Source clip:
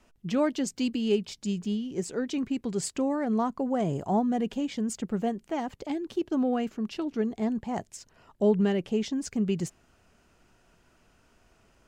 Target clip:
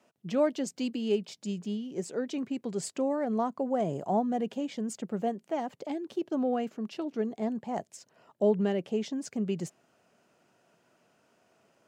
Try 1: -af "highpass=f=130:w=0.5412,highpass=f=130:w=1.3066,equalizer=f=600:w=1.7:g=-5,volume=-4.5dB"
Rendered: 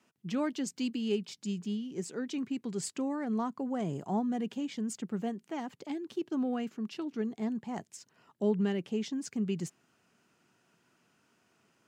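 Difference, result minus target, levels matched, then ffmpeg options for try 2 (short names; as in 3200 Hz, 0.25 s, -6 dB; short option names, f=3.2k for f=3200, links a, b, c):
500 Hz band -3.5 dB
-af "highpass=f=130:w=0.5412,highpass=f=130:w=1.3066,equalizer=f=600:w=1.7:g=6.5,volume=-4.5dB"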